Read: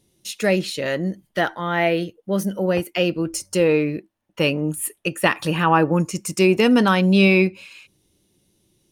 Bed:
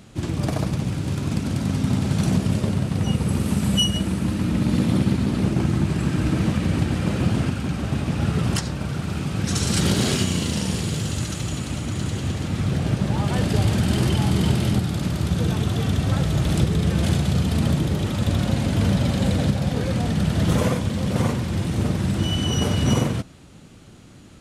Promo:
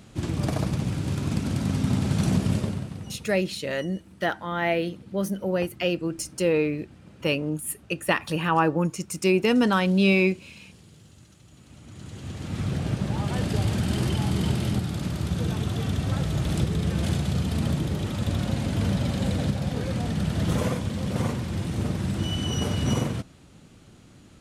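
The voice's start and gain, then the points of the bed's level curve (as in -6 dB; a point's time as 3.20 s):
2.85 s, -5.0 dB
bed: 2.56 s -2.5 dB
3.44 s -26.5 dB
11.46 s -26.5 dB
12.59 s -5 dB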